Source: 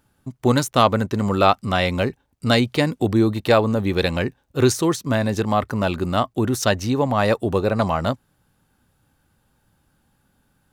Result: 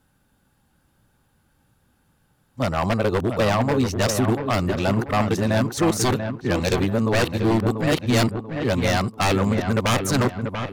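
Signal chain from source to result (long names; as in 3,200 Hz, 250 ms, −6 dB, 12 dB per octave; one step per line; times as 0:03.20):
played backwards from end to start
wave folding −14 dBFS
on a send: delay with a low-pass on its return 688 ms, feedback 37%, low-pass 2,800 Hz, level −7 dB
on the sum: AAC 192 kbit/s 44,100 Hz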